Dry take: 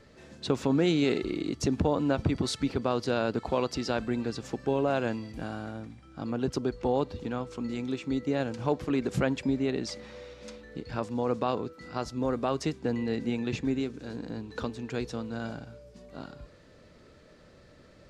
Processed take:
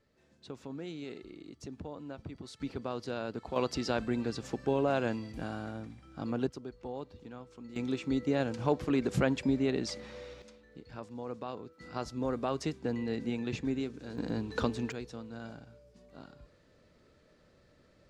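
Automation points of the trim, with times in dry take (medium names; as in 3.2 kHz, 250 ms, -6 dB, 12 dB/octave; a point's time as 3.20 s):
-17 dB
from 2.60 s -9 dB
from 3.56 s -2 dB
from 6.47 s -13.5 dB
from 7.76 s -1 dB
from 10.42 s -11.5 dB
from 11.80 s -4 dB
from 14.18 s +3 dB
from 14.92 s -8.5 dB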